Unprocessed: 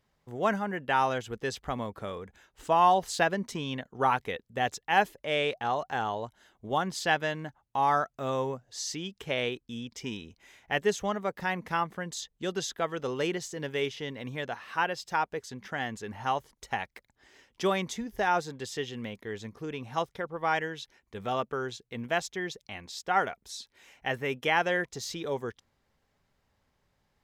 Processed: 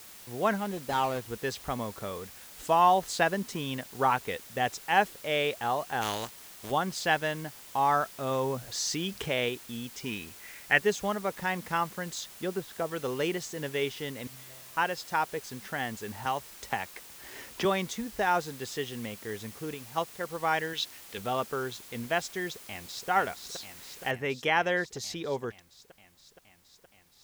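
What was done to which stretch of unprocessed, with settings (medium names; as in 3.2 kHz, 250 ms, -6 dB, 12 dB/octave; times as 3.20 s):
0.57–1.31 s: median filter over 25 samples
2.20–2.75 s: treble shelf 4.5 kHz +8 dB
6.01–6.70 s: spectral contrast reduction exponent 0.41
8.31–9.49 s: level flattener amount 50%
10.09–10.82 s: high-order bell 1.9 kHz +8.5 dB 1.1 oct
12.29–12.91 s: low-pass that closes with the level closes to 750 Hz, closed at -26.5 dBFS
14.27–14.77 s: feedback comb 130 Hz, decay 1.6 s, mix 100%
16.25–17.65 s: three bands compressed up and down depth 70%
19.74–20.21 s: upward expansion, over -40 dBFS
20.73–21.18 s: frequency weighting D
22.50–23.09 s: echo throw 470 ms, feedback 80%, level -6.5 dB
24.11 s: noise floor step -49 dB -67 dB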